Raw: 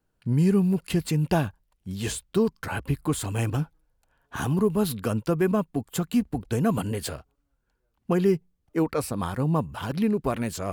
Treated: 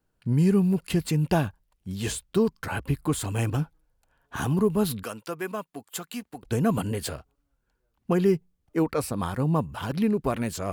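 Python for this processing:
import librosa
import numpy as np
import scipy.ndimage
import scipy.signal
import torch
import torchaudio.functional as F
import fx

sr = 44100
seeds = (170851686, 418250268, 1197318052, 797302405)

y = fx.highpass(x, sr, hz=1100.0, slope=6, at=(5.03, 6.43))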